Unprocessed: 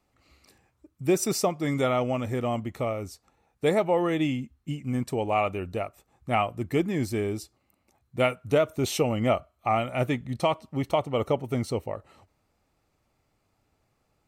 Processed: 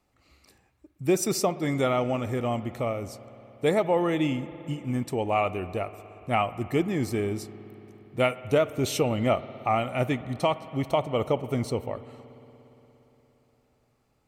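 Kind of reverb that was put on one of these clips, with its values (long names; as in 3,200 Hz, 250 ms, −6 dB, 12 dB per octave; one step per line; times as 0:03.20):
spring reverb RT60 3.9 s, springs 58 ms, chirp 80 ms, DRR 14.5 dB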